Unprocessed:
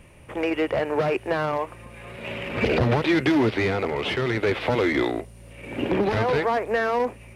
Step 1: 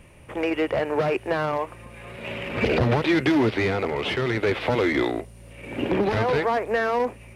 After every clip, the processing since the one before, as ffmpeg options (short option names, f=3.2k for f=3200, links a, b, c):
-af anull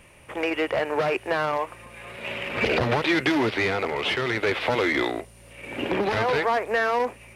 -af "lowshelf=f=460:g=-9.5,volume=3dB"